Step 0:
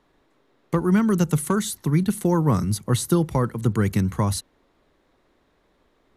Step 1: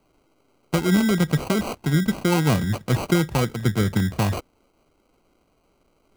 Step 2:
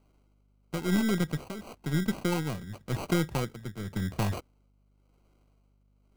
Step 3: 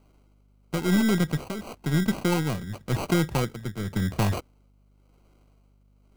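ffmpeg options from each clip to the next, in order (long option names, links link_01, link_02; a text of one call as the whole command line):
ffmpeg -i in.wav -af "acrusher=samples=25:mix=1:aa=0.000001" out.wav
ffmpeg -i in.wav -af "aeval=exprs='0.447*(cos(1*acos(clip(val(0)/0.447,-1,1)))-cos(1*PI/2))+0.126*(cos(2*acos(clip(val(0)/0.447,-1,1)))-cos(2*PI/2))+0.1*(cos(4*acos(clip(val(0)/0.447,-1,1)))-cos(4*PI/2))+0.0316*(cos(6*acos(clip(val(0)/0.447,-1,1)))-cos(6*PI/2))+0.02*(cos(8*acos(clip(val(0)/0.447,-1,1)))-cos(8*PI/2))':channel_layout=same,tremolo=f=0.94:d=0.73,aeval=exprs='val(0)+0.00126*(sin(2*PI*50*n/s)+sin(2*PI*2*50*n/s)/2+sin(2*PI*3*50*n/s)/3+sin(2*PI*4*50*n/s)/4+sin(2*PI*5*50*n/s)/5)':channel_layout=same,volume=-7dB" out.wav
ffmpeg -i in.wav -af "asoftclip=type=tanh:threshold=-19dB,volume=6dB" out.wav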